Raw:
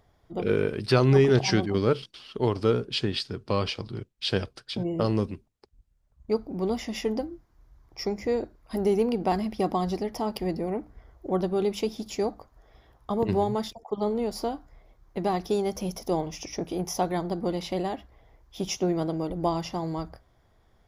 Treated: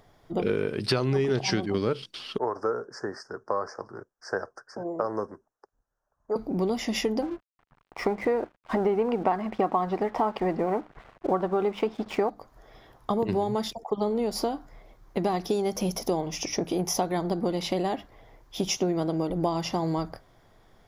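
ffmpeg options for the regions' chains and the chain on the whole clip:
-filter_complex "[0:a]asettb=1/sr,asplit=3[a][b][c];[a]atrim=end=2.384[d];[b]atrim=start=2.38:end=6.36,asetpts=PTS-STARTPTS,afade=t=in:d=0.004:c=qsin,afade=t=out:st=3.976:d=0.004:c=qsin,asuperstop=centerf=3100:order=12:qfactor=0.81,acrossover=split=470 5100:gain=0.1 1 0.0794[e][f][g];[e][f][g]amix=inputs=3:normalize=0[h];[c]atrim=start=6.356[i];[d][h]acrossfade=d=0.004:c1=hsin:c2=qsin[j];[j][i]acrossfade=d=0.004:c1=qsin:c2=hsin,asettb=1/sr,asplit=3[k][l][m];[k]atrim=end=7.224[n];[l]atrim=start=7.22:end=12.3,asetpts=PTS-STARTPTS,afade=t=in:d=0.004:c=qsin,afade=t=out:st=5.076:d=0.004:c=qsin,lowpass=2.3k,equalizer=f=1.2k:t=o:w=2.3:g=12.5,aeval=exprs='sgn(val(0))*max(abs(val(0))-0.00299,0)':c=same[o];[m]atrim=start=12.296[p];[n][o]acrossfade=d=0.004:c1=hsin:c2=qsin[q];[q][p]acrossfade=d=0.004:c1=qsin:c2=hsin,equalizer=f=61:t=o:w=0.88:g=-14.5,acompressor=threshold=-31dB:ratio=4,volume=7dB"

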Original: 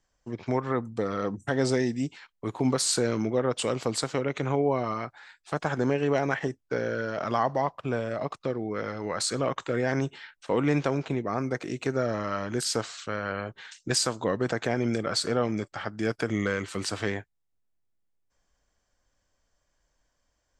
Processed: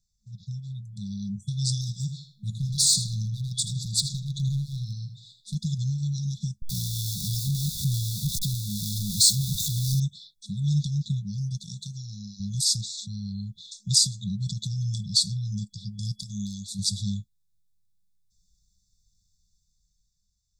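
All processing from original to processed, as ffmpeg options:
-filter_complex "[0:a]asettb=1/sr,asplit=3[a][b][c];[a]atrim=end=1.814[d];[b]atrim=start=1.81:end=5.55,asetpts=PTS-STARTPTS,afade=t=in:d=0.004:c=qsin,afade=t=out:st=3.736:d=0.004:c=qsin,asoftclip=type=hard:threshold=-21.5dB,asplit=2[e][f];[f]adelay=80,lowpass=f=4.1k:p=1,volume=-7dB,asplit=2[g][h];[h]adelay=80,lowpass=f=4.1k:p=1,volume=0.33,asplit=2[i][j];[j]adelay=80,lowpass=f=4.1k:p=1,volume=0.33,asplit=2[k][l];[l]adelay=80,lowpass=f=4.1k:p=1,volume=0.33[m];[e][g][i][k][m]amix=inputs=5:normalize=0,atrim=end_sample=164934[n];[c]atrim=start=5.546[o];[d][n]acrossfade=d=0.004:c1=hsin:c2=qsin[p];[p][o]acrossfade=d=0.004:c1=qsin:c2=hsin,asettb=1/sr,asplit=3[q][r][s];[q]atrim=end=6.624[t];[r]atrim=start=6.62:end=10,asetpts=PTS-STARTPTS,afade=t=in:d=0.004:c=qsin,afade=t=out:st=3.376:d=0.004:c=qsin,aeval=exprs='val(0)+0.5*0.0398*sgn(val(0))':c=same,highshelf=f=7.9k:g=4.5[u];[s]atrim=start=9.996[v];[t][u]acrossfade=d=0.004:c1=hsin:c2=qsin[w];[w][v]acrossfade=d=0.004:c1=qsin:c2=hsin,asettb=1/sr,asplit=3[x][y][z];[x]atrim=end=11.614[aa];[y]atrim=start=11.61:end=12.4,asetpts=PTS-STARTPTS,afade=t=in:d=0.004:c=qsin,afade=t=out:st=0.786:d=0.004:c=qsin,acrossover=split=99|710|5400[ab][ac][ad][ae];[ab]acompressor=threshold=-55dB:ratio=3[af];[ac]acompressor=threshold=-36dB:ratio=3[ag];[ad]acompressor=threshold=-37dB:ratio=3[ah];[ae]acompressor=threshold=-53dB:ratio=3[ai];[af][ag][ah][ai]amix=inputs=4:normalize=0,bandreject=f=50:t=h:w=6,bandreject=f=100:t=h:w=6,bandreject=f=150:t=h:w=6,bandreject=f=200:t=h:w=6,bandreject=f=250:t=h:w=6,bandreject=f=300:t=h:w=6,bandreject=f=350:t=h:w=6[aj];[z]atrim=start=12.396[ak];[aa][aj]acrossfade=d=0.004:c1=hsin:c2=qsin[al];[al][ak]acrossfade=d=0.004:c1=qsin:c2=hsin,asettb=1/sr,asplit=3[am][an][ao];[am]atrim=end=16.194[ap];[an]atrim=start=16.19:end=16.79,asetpts=PTS-STARTPTS,afade=t=in:d=0.004:c=qsin,afade=t=out:st=0.596:d=0.004:c=qsin,equalizer=f=130:t=o:w=1.5:g=-11.5,asoftclip=type=hard:threshold=-17dB[aq];[ao]atrim=start=16.786[ar];[ap][aq]acrossfade=d=0.004:c1=hsin:c2=qsin[as];[as][ar]acrossfade=d=0.004:c1=qsin:c2=hsin,afftfilt=real='re*(1-between(b*sr/4096,210,3400))':imag='im*(1-between(b*sr/4096,210,3400))':win_size=4096:overlap=0.75,equalizer=f=2.7k:t=o:w=0.38:g=6.5,dynaudnorm=f=240:g=11:m=7dB"

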